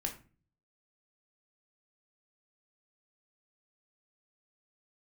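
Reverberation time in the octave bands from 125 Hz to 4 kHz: 0.75, 0.60, 0.40, 0.35, 0.35, 0.25 s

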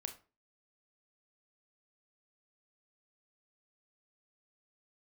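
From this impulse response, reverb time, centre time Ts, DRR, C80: 0.35 s, 11 ms, 6.5 dB, 18.0 dB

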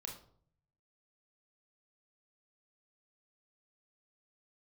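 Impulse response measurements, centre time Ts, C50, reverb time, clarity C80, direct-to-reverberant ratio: 25 ms, 7.0 dB, 0.55 s, 12.0 dB, 0.5 dB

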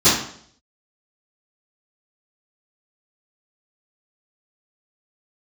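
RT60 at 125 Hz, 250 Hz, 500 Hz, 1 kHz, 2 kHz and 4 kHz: 0.65, 0.65, 0.65, 0.55, 0.55, 0.55 s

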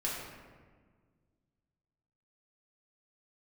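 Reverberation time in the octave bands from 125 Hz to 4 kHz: 2.5, 2.3, 1.7, 1.5, 1.3, 0.85 s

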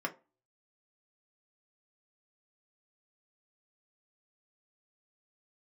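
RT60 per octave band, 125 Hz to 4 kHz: 0.25, 0.35, 0.30, 0.30, 0.25, 0.15 s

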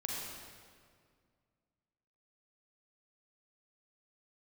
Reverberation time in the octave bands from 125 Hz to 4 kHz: 2.6, 2.4, 2.2, 1.9, 1.7, 1.5 s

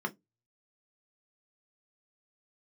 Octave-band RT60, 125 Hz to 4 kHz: 0.30, 0.25, 0.20, 0.15, 0.10, 0.15 s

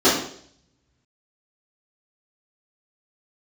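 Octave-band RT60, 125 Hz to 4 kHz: 1.9, 0.65, 0.65, 0.55, 0.55, 0.65 s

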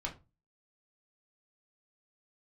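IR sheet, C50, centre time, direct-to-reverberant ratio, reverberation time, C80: 13.5 dB, 14 ms, -1.5 dB, 0.30 s, 20.0 dB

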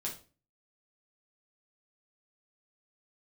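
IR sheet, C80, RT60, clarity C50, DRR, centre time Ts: 15.5 dB, 0.35 s, 9.5 dB, -3.5 dB, 20 ms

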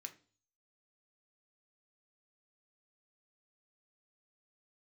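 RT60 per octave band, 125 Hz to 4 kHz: 0.65, 0.50, 0.45, 0.35, 0.35, 0.50 s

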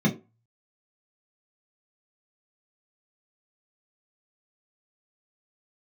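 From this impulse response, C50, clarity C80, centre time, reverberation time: 12.5 dB, 18.0 dB, 16 ms, 0.30 s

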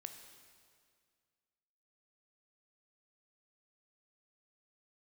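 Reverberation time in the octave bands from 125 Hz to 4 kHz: 2.3, 2.2, 2.1, 2.0, 1.9, 1.9 s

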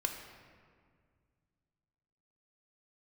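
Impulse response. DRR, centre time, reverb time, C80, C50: 3.5 dB, 40 ms, 2.0 s, 7.0 dB, 6.0 dB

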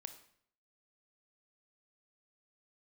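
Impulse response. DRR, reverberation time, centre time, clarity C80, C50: 8.5 dB, 0.65 s, 9 ms, 14.0 dB, 11.0 dB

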